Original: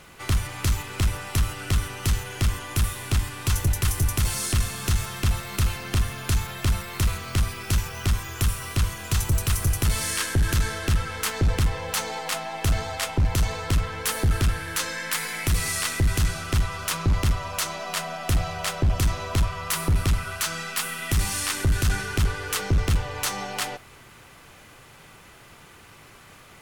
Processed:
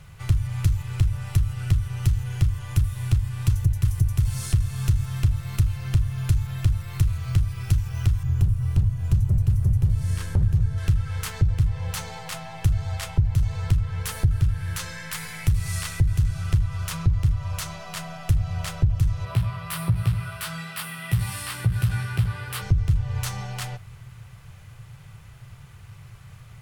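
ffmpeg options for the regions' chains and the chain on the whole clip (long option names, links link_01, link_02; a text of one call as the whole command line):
ffmpeg -i in.wav -filter_complex "[0:a]asettb=1/sr,asplit=3[link_01][link_02][link_03];[link_01]atrim=end=8.234[link_04];[link_02]atrim=start=8.23:end=10.78,asetpts=PTS-STARTPTS,afade=type=in:duration=0.004:curve=qsin,afade=type=out:start_time=2.546:duration=0.004:curve=qsin,tiltshelf=frequency=630:gain=7.5,aeval=exprs='0.211*(abs(mod(val(0)/0.211+3,4)-2)-1)':channel_layout=same[link_05];[link_03]atrim=start=10.776[link_06];[link_04][link_05]acrossfade=duration=0.004:curve1=hsin:curve2=qsin[link_07];[link_07][link_06]acrossfade=duration=0.004:curve1=qsin:curve2=hsin,asettb=1/sr,asplit=3[link_08][link_09][link_10];[link_08]atrim=end=19.254[link_11];[link_09]atrim=start=19.25:end=22.62,asetpts=PTS-STARTPTS,afade=type=in:duration=0.004:curve=qsin,afade=type=out:start_time=3.366:duration=0.004:curve=qsin,highpass=150,equalizer=frequency=6500:width=2.3:gain=-12,asplit=2[link_12][link_13];[link_13]adelay=17,volume=-2dB[link_14];[link_12][link_14]amix=inputs=2:normalize=0,atrim=end_sample=148617[link_15];[link_10]atrim=start=22.616[link_16];[link_11][link_15]acrossfade=duration=0.004:curve1=hsin:curve2=qsin[link_17];[link_17][link_16]acrossfade=duration=0.004:curve1=qsin:curve2=hsin,lowshelf=frequency=180:width_type=q:width=3:gain=13.5,acompressor=threshold=-11dB:ratio=6,volume=-6dB" out.wav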